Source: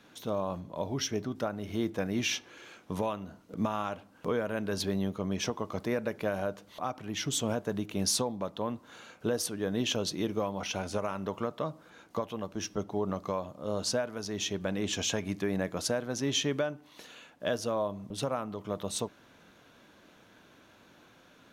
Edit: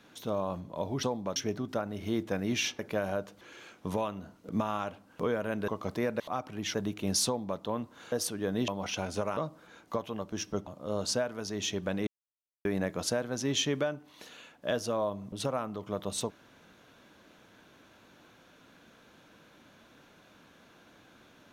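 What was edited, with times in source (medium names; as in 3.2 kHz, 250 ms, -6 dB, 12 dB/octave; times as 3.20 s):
4.73–5.57 s: delete
6.09–6.71 s: move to 2.46 s
7.25–7.66 s: delete
8.18–8.51 s: copy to 1.03 s
9.04–9.31 s: delete
9.87–10.45 s: delete
11.14–11.60 s: delete
12.90–13.45 s: delete
14.85–15.43 s: mute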